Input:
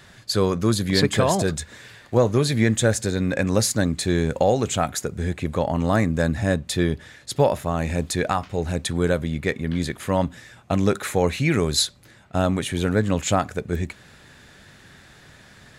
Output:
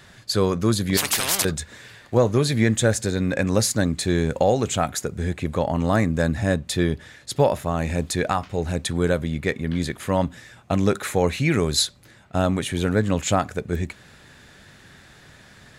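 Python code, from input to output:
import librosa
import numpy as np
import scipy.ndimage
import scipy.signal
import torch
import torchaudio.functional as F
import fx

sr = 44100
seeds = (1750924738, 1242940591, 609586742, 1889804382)

y = fx.spectral_comp(x, sr, ratio=10.0, at=(0.97, 1.45))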